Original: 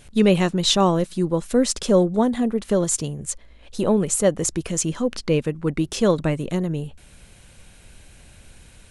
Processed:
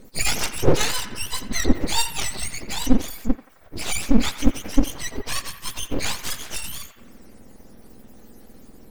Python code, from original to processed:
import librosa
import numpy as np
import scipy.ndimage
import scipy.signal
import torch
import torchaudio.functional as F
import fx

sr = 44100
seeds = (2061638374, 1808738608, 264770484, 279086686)

y = fx.octave_mirror(x, sr, pivot_hz=1000.0)
y = np.abs(y)
y = fx.echo_banded(y, sr, ms=87, feedback_pct=76, hz=1500.0, wet_db=-11.0)
y = y * 10.0 ** (1.0 / 20.0)